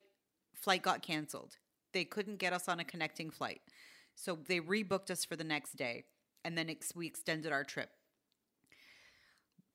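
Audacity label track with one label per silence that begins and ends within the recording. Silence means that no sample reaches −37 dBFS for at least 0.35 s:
1.410000	1.940000	silence
3.530000	4.240000	silence
5.990000	6.450000	silence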